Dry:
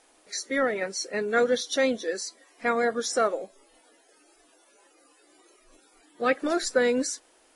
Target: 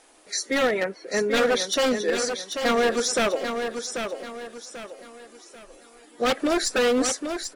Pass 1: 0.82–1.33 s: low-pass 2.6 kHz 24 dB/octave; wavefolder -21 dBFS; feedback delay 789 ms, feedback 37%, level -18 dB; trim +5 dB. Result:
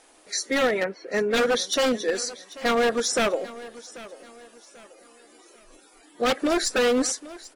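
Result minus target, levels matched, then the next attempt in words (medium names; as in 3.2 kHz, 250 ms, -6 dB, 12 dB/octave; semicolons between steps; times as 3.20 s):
echo-to-direct -11 dB
0.82–1.33 s: low-pass 2.6 kHz 24 dB/octave; wavefolder -21 dBFS; feedback delay 789 ms, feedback 37%, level -7 dB; trim +5 dB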